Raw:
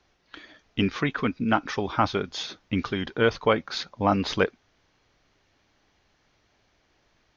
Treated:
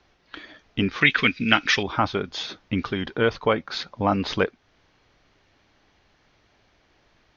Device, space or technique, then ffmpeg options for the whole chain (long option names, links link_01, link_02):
parallel compression: -filter_complex "[0:a]asplit=2[link_01][link_02];[link_02]acompressor=threshold=-34dB:ratio=6,volume=-0.5dB[link_03];[link_01][link_03]amix=inputs=2:normalize=0,lowpass=5400,asettb=1/sr,asplit=3[link_04][link_05][link_06];[link_04]atrim=end=1.014[link_07];[link_05]atrim=start=1.01:end=1.83,asetpts=PTS-STARTPTS,afade=type=in:duration=0.004:curve=qsin,afade=type=out:start_time=0.816:duration=0.004:curve=qsin,highshelf=frequency=1500:width_type=q:width=1.5:gain=13[link_08];[link_06]atrim=start=1.826[link_09];[link_07][link_08]acrossfade=duration=0.004:curve1=hsin:curve2=qsin[link_10];[link_10][link_09]acrossfade=duration=0.004:curve1=qsin:curve2=hsin,volume=-1dB"